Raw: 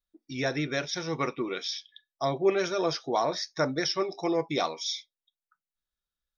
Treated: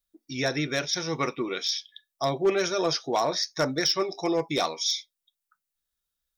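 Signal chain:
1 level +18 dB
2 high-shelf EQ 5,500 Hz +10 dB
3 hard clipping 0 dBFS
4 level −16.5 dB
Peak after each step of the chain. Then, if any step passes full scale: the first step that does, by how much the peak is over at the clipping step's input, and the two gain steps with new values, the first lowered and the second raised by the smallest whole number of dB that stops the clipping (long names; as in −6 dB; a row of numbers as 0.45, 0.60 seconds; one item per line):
+4.5, +5.5, 0.0, −16.5 dBFS
step 1, 5.5 dB
step 1 +12 dB, step 4 −10.5 dB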